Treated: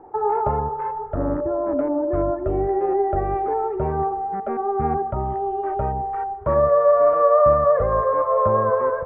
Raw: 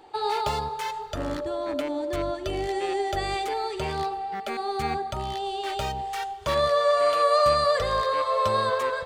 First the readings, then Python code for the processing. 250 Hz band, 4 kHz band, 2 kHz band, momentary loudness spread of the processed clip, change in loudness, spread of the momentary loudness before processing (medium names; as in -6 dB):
+7.5 dB, under -35 dB, -5.5 dB, 10 LU, +5.0 dB, 10 LU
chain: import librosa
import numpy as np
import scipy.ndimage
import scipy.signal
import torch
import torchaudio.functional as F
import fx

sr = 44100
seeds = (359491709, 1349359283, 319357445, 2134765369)

y = scipy.signal.sosfilt(scipy.signal.bessel(6, 880.0, 'lowpass', norm='mag', fs=sr, output='sos'), x)
y = y * 10.0 ** (8.0 / 20.0)